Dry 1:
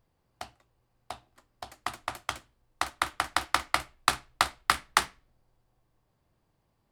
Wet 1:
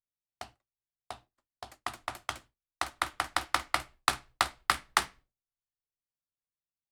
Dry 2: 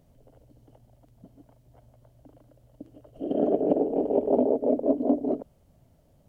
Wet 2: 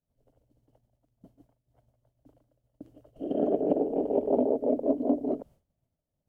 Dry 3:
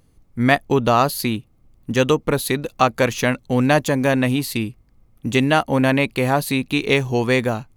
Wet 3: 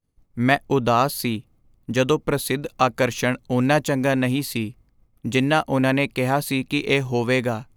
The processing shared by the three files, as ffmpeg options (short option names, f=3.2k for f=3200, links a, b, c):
-af "agate=range=-33dB:threshold=-47dB:ratio=3:detection=peak,volume=-2.5dB"